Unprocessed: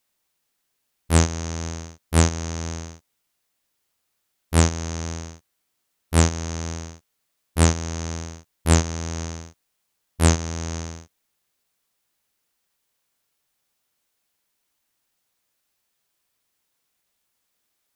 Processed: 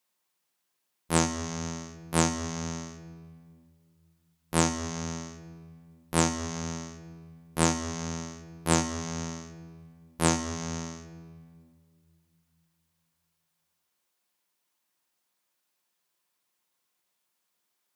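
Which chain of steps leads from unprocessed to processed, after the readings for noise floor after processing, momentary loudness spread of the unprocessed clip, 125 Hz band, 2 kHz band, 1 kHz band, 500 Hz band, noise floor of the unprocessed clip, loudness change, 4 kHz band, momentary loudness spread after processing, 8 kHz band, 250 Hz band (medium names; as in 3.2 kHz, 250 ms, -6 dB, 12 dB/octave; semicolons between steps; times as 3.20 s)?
-79 dBFS, 16 LU, -10.5 dB, -4.0 dB, -1.5 dB, -4.0 dB, -75 dBFS, -6.0 dB, -4.0 dB, 20 LU, -4.0 dB, -3.5 dB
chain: high-pass 150 Hz 12 dB/octave; peaking EQ 1 kHz +4.5 dB 0.35 oct; simulated room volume 3000 m³, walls mixed, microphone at 0.92 m; trim -4.5 dB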